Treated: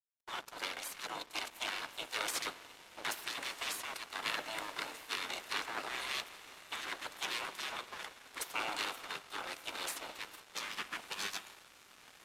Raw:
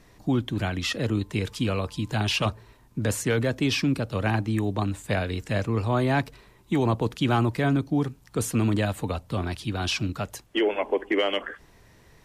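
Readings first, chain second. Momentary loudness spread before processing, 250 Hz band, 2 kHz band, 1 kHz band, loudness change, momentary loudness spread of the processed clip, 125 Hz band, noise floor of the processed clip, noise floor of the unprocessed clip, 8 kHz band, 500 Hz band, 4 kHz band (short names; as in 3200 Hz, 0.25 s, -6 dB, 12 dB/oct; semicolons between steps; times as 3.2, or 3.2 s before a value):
7 LU, -29.5 dB, -7.5 dB, -10.0 dB, -13.0 dB, 9 LU, -39.5 dB, -60 dBFS, -56 dBFS, -6.0 dB, -21.5 dB, -6.5 dB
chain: minimum comb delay 1.4 ms; spectral gate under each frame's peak -20 dB weak; HPF 370 Hz 6 dB/oct; on a send: diffused feedback echo 1.337 s, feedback 57%, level -11.5 dB; on the sum: spring tank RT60 3 s, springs 47 ms, chirp 45 ms, DRR 9 dB; crossover distortion -51 dBFS; gain +1.5 dB; AAC 96 kbps 32000 Hz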